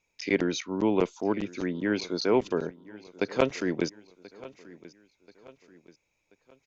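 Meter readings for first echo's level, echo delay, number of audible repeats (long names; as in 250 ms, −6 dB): −20.0 dB, 1,033 ms, 3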